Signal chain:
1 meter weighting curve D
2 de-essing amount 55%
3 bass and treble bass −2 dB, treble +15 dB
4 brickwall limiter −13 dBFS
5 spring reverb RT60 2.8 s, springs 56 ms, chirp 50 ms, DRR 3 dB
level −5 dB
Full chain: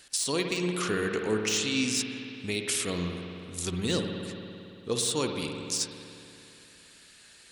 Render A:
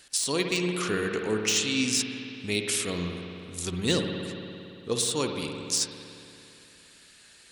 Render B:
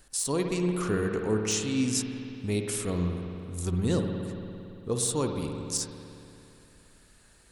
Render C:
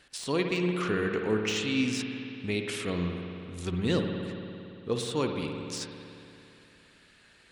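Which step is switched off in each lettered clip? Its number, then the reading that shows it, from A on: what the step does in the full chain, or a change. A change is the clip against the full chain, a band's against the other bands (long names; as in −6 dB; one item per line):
4, change in crest factor +4.0 dB
1, 4 kHz band −6.5 dB
3, 8 kHz band −11.5 dB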